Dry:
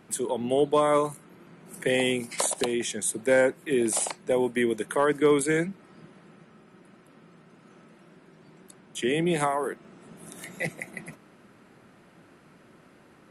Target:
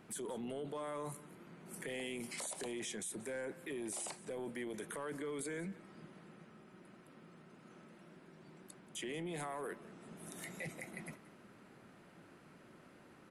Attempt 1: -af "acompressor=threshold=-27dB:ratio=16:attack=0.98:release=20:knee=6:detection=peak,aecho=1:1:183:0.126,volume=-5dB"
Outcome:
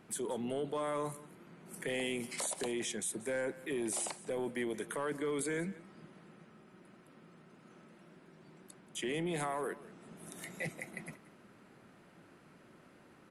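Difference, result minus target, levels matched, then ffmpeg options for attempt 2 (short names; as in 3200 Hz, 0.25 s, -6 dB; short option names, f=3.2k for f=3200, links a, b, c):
compressor: peak gain reduction -6.5 dB
-af "acompressor=threshold=-34dB:ratio=16:attack=0.98:release=20:knee=6:detection=peak,aecho=1:1:183:0.126,volume=-5dB"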